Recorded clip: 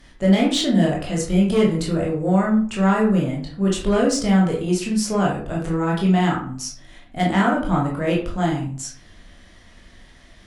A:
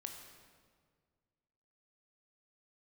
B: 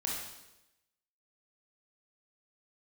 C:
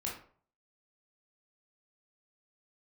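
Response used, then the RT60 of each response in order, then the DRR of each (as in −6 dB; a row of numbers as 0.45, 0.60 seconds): C; 1.8, 0.95, 0.50 seconds; 3.0, −3.5, −3.5 decibels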